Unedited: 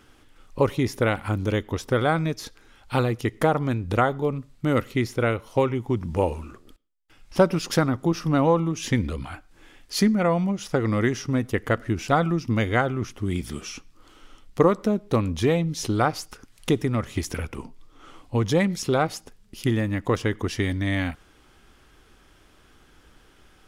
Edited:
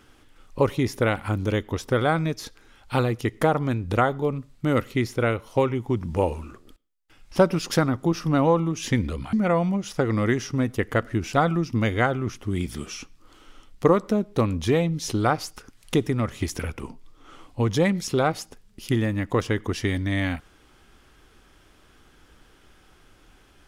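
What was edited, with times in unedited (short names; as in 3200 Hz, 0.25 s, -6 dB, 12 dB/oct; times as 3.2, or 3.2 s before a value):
9.33–10.08 cut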